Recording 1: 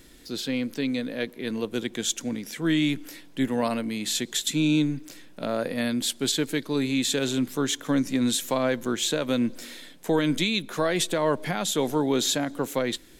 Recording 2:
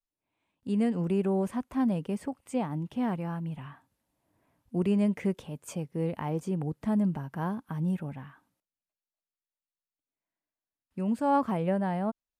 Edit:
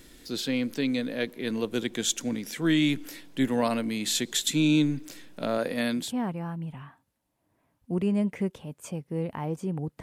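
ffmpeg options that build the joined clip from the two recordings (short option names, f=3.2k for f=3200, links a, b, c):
-filter_complex "[0:a]asettb=1/sr,asplit=3[a][b][c];[a]atrim=end=5.584[d];[b]atrim=start=5.58:end=6.14,asetpts=PTS-STARTPTS,afade=t=in:d=0.004:c=qsin,afade=t=out:st=0.556:d=0.004:c=qsin,lowshelf=f=84:g=-12[e];[c]atrim=start=6.136[f];[d][e]acrossfade=d=0.004:c1=hsin:c2=qsin[g];[g][f]acrossfade=d=0.004:c1=qsin:c2=hsin,apad=whole_dur=10.02,atrim=end=10.02,atrim=end=6.14,asetpts=PTS-STARTPTS[h];[1:a]atrim=start=2.78:end=6.86,asetpts=PTS-STARTPTS[i];[h][i]acrossfade=d=0.2:c1=tri:c2=tri"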